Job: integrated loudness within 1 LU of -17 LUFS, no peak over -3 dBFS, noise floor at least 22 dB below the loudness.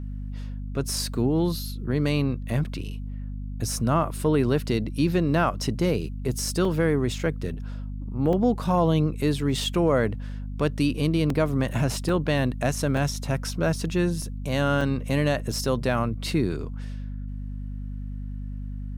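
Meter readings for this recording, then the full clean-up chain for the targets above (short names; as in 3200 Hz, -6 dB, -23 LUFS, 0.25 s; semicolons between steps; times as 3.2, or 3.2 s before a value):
dropouts 7; longest dropout 2.8 ms; hum 50 Hz; harmonics up to 250 Hz; hum level -30 dBFS; loudness -25.5 LUFS; peak -9.5 dBFS; loudness target -17.0 LUFS
-> interpolate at 6.65/8.33/11.3/12.09/12.97/14.22/14.81, 2.8 ms; de-hum 50 Hz, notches 5; gain +8.5 dB; limiter -3 dBFS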